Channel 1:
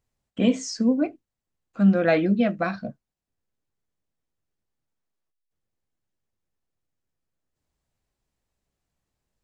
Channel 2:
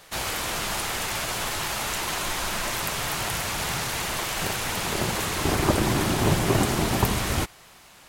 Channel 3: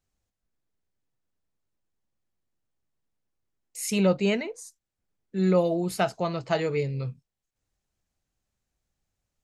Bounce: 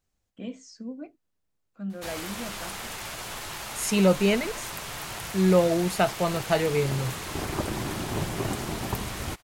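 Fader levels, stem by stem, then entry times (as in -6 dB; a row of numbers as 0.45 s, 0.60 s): -16.5 dB, -8.0 dB, +2.0 dB; 0.00 s, 1.90 s, 0.00 s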